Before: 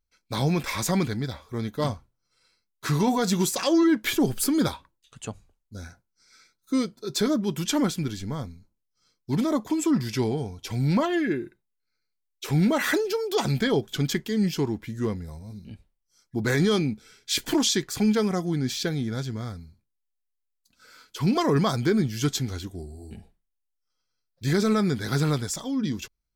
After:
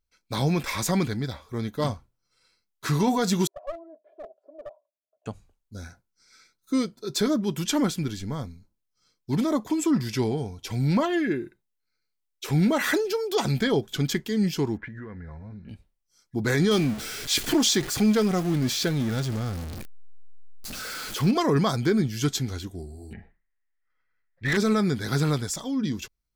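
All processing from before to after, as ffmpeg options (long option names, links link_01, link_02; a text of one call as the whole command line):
ffmpeg -i in.wav -filter_complex "[0:a]asettb=1/sr,asplit=3[link_01][link_02][link_03];[link_01]atrim=end=3.474[link_04];[link_02]atrim=start=3.47:end=5.26,asetpts=PTS-STARTPTS,afade=type=in:duration=0.004:curve=qsin,afade=type=out:start_time=1.786:duration=0.004:curve=qsin,asuperpass=centerf=600:order=4:qfactor=5.9,aecho=1:1:2.9:0.7,atrim=end_sample=78939,aeval=exprs='clip(val(0),-1,0.0141)':channel_layout=same[link_05];[link_03]atrim=start=5.256[link_06];[link_04][link_05]acrossfade=duration=0.004:curve1=hsin:curve2=qsin[link_07];[link_07][link_06]acrossfade=duration=0.004:curve1=qsin:curve2=hsin,asettb=1/sr,asplit=3[link_08][link_09][link_10];[link_08]atrim=end=14.774[link_11];[link_09]atrim=start=14.77:end=15.69,asetpts=PTS-STARTPTS,afade=type=in:duration=0.004:curve=qsin,afade=type=out:start_time=0.916:duration=0.004:curve=qsin,acompressor=threshold=-36dB:ratio=12:attack=3.2:release=140:knee=1:detection=peak,lowpass=frequency=1700:width_type=q:width=4.8[link_12];[link_10]atrim=start=15.686[link_13];[link_11][link_12]acrossfade=duration=0.004:curve1=hsin:curve2=qsin[link_14];[link_14][link_13]acrossfade=duration=0.004:curve1=qsin:curve2=hsin,asettb=1/sr,asplit=3[link_15][link_16][link_17];[link_15]atrim=end=16.714[link_18];[link_16]atrim=start=16.71:end=21.31,asetpts=PTS-STARTPTS,afade=type=in:duration=0.004:curve=qsin,afade=type=out:start_time=4.596:duration=0.004:curve=qsin,aeval=exprs='val(0)+0.5*0.0316*sgn(val(0))':channel_layout=same,bandreject=frequency=980:width=13[link_19];[link_17]atrim=start=21.306[link_20];[link_18][link_19]acrossfade=duration=0.004:curve1=hsin:curve2=qsin[link_21];[link_21][link_20]acrossfade=duration=0.004:curve1=qsin:curve2=hsin,asettb=1/sr,asplit=3[link_22][link_23][link_24];[link_22]atrim=end=23.134[link_25];[link_23]atrim=start=23.13:end=24.57,asetpts=PTS-STARTPTS,afade=type=in:duration=0.004:curve=qsin,afade=type=out:start_time=1.436:duration=0.004:curve=qsin,lowpass=frequency=1900:width_type=q:width=8.9,asubboost=boost=3.5:cutoff=72,asoftclip=type=hard:threshold=-21dB[link_26];[link_24]atrim=start=24.566[link_27];[link_25][link_26]acrossfade=duration=0.004:curve1=hsin:curve2=qsin[link_28];[link_28][link_27]acrossfade=duration=0.004:curve1=qsin:curve2=hsin" out.wav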